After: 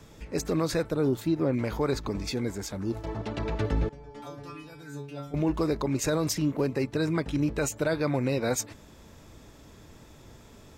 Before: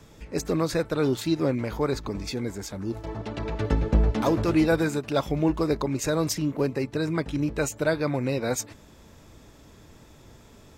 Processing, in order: 0.90–1.52 s: peaking EQ 2.3 kHz -> 8.7 kHz -11 dB 2.7 oct; peak limiter -17.5 dBFS, peak gain reduction 8 dB; 3.89–5.34 s: inharmonic resonator 140 Hz, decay 0.5 s, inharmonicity 0.002

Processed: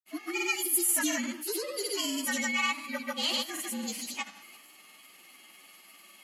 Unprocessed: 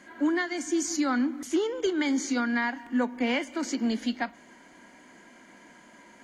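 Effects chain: frequency axis rescaled in octaves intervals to 115%; tilt EQ +4.5 dB/octave; transient shaper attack -2 dB, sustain +5 dB; granulator, pitch spread up and down by 0 st; SBC 192 kbps 32 kHz

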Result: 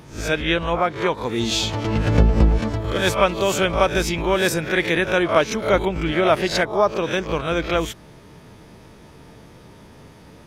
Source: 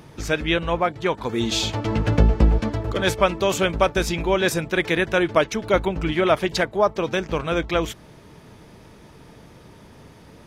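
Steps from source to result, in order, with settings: reverse spectral sustain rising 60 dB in 0.37 s

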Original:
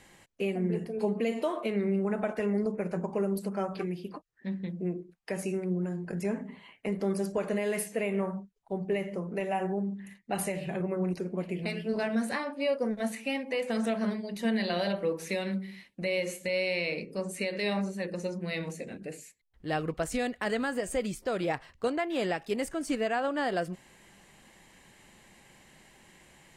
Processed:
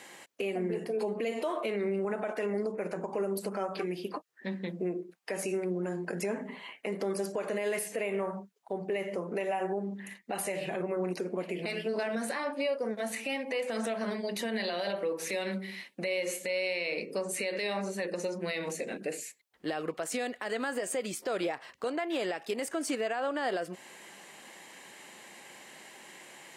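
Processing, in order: high-pass 330 Hz 12 dB/octave; compression 2.5:1, threshold -38 dBFS, peak gain reduction 9 dB; peak limiter -31.5 dBFS, peak gain reduction 7.5 dB; trim +8 dB

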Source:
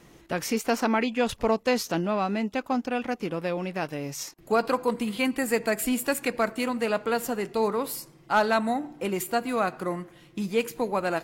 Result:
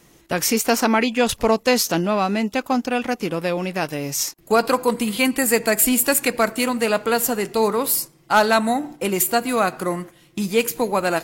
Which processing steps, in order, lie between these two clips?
gate -42 dBFS, range -7 dB; treble shelf 5.1 kHz +10.5 dB; trim +6 dB

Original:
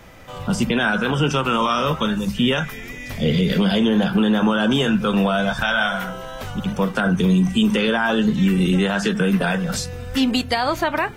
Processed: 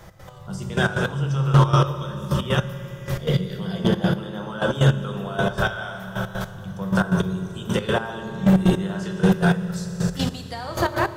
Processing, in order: on a send at -2 dB: peaking EQ 140 Hz +12.5 dB 1.1 oct + reverberation RT60 3.8 s, pre-delay 3 ms; on the sum: trance gate "x.x....." 156 bpm -12 dB; hum notches 50/100 Hz; hard clipper -6.5 dBFS, distortion -17 dB; fifteen-band graphic EQ 100 Hz +4 dB, 250 Hz -11 dB, 2.5 kHz -9 dB

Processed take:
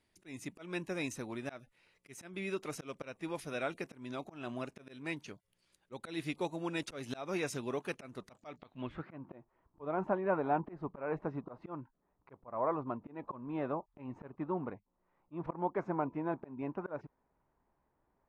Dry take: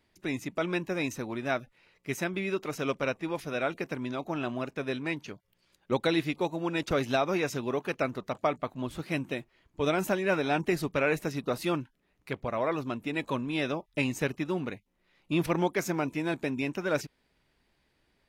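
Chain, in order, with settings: slow attack 213 ms; low-pass sweep 10 kHz -> 1 kHz, 8.30–9.19 s; trim -6.5 dB

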